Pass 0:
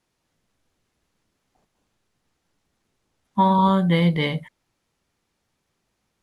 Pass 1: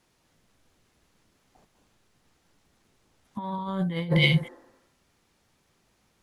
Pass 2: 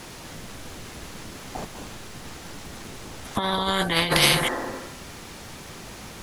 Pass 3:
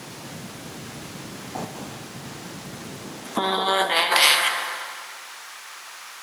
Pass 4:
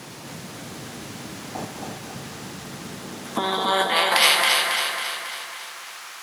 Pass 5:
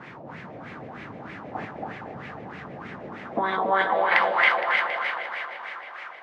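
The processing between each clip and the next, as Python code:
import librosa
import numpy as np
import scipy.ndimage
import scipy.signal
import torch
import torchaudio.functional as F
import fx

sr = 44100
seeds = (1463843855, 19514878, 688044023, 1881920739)

y1 = fx.spec_repair(x, sr, seeds[0], start_s=4.12, length_s=0.82, low_hz=230.0, high_hz=2000.0, source='both')
y1 = fx.over_compress(y1, sr, threshold_db=-24.0, ratio=-0.5)
y2 = fx.spectral_comp(y1, sr, ratio=4.0)
y2 = y2 * 10.0 ** (5.5 / 20.0)
y3 = fx.filter_sweep_highpass(y2, sr, from_hz=140.0, to_hz=1200.0, start_s=2.92, end_s=4.36, q=1.4)
y3 = fx.rev_plate(y3, sr, seeds[1], rt60_s=2.4, hf_ratio=0.75, predelay_ms=0, drr_db=6.5)
y3 = y3 * 10.0 ** (1.5 / 20.0)
y4 = fx.echo_feedback(y3, sr, ms=274, feedback_pct=55, wet_db=-4)
y4 = y4 * 10.0 ** (-1.0 / 20.0)
y5 = fx.filter_lfo_lowpass(y4, sr, shape='sine', hz=3.2, low_hz=590.0, high_hz=2200.0, q=3.3)
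y5 = fx.echo_feedback(y5, sr, ms=465, feedback_pct=46, wet_db=-12)
y5 = y5 * 10.0 ** (-4.5 / 20.0)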